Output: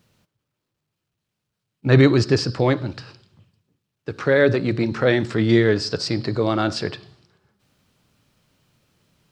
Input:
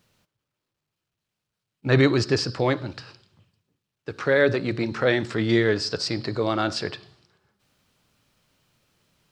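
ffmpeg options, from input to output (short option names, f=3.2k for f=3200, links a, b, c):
-af "equalizer=f=140:w=0.36:g=5,volume=1dB"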